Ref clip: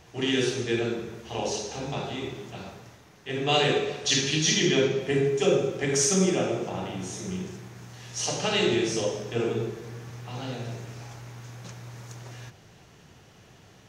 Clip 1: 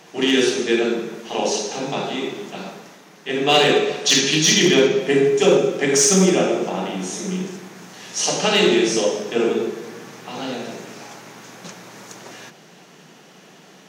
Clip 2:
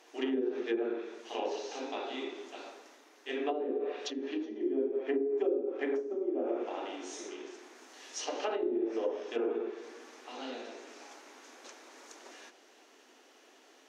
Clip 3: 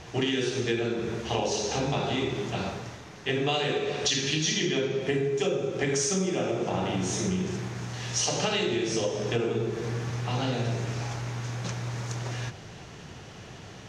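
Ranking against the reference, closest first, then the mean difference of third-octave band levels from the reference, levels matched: 1, 3, 2; 2.5, 5.5, 10.5 dB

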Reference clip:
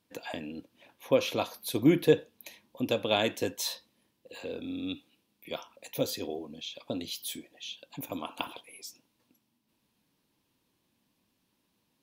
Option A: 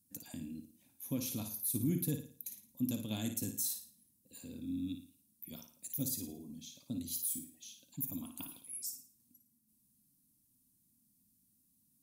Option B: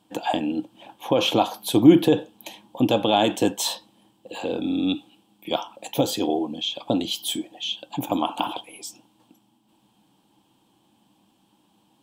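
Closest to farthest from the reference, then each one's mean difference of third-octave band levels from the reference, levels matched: B, A; 3.0, 9.5 dB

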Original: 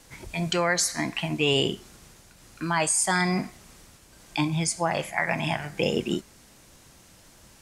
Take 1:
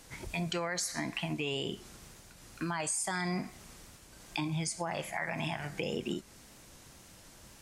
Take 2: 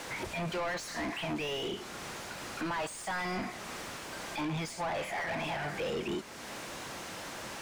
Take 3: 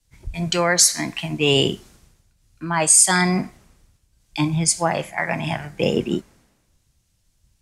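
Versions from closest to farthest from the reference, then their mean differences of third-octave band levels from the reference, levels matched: 1, 3, 2; 4.5, 8.5, 11.5 dB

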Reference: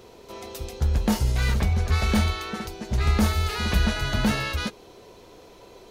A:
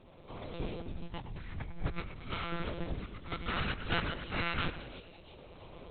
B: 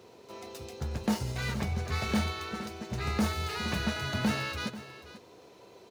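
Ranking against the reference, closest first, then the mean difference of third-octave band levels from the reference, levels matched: B, A; 1.5, 12.0 dB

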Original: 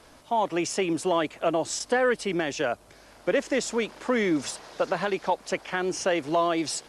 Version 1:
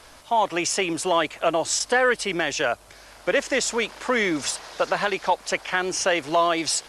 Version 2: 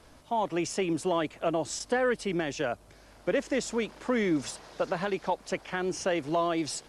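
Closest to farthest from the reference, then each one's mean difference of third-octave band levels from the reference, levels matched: 2, 1; 1.5, 3.0 dB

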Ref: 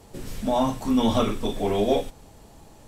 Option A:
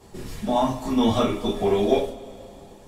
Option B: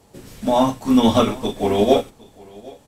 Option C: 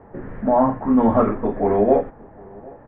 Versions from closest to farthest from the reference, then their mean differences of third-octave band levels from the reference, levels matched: A, B, C; 3.0, 4.0, 8.5 dB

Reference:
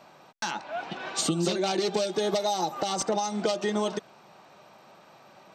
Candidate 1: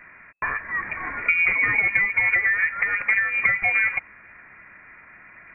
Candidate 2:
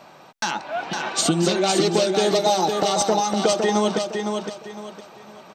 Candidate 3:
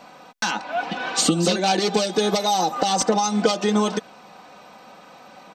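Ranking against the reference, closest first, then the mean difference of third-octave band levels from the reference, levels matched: 3, 2, 1; 2.0, 3.5, 14.0 dB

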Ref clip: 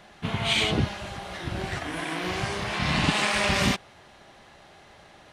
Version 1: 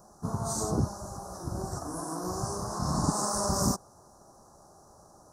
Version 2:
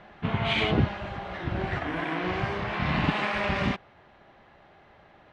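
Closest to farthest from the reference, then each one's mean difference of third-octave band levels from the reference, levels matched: 2, 1; 6.0, 8.5 dB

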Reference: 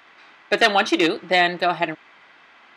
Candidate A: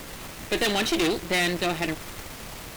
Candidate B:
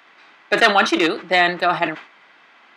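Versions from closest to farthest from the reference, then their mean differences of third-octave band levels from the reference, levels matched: B, A; 2.0, 16.0 dB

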